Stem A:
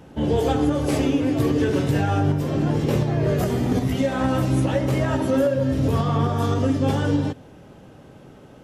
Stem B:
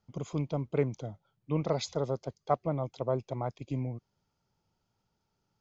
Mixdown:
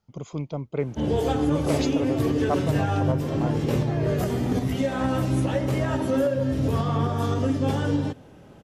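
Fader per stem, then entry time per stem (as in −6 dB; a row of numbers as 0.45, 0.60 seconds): −3.0, +1.5 decibels; 0.80, 0.00 seconds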